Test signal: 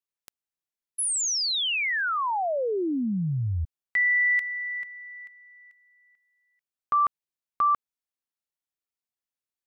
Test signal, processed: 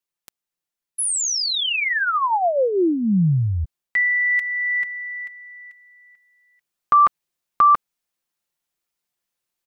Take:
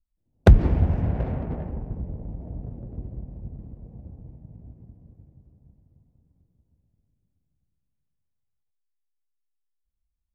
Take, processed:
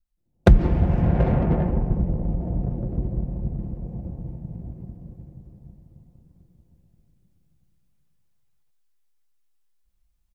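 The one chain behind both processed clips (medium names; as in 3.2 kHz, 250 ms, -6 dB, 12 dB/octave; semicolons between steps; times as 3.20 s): gain riding within 5 dB 0.5 s; comb 5.7 ms, depth 39%; trim +5 dB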